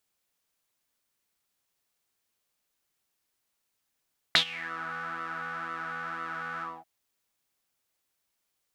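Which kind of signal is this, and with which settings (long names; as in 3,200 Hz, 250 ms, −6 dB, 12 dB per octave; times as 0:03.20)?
subtractive patch with pulse-width modulation E3, oscillator 2 square, interval +7 semitones, detune 28 cents, sub −13.5 dB, filter bandpass, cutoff 700 Hz, Q 7.3, filter envelope 2.5 octaves, filter decay 0.37 s, attack 1 ms, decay 0.09 s, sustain −21.5 dB, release 0.23 s, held 2.26 s, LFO 2 Hz, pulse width 36%, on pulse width 16%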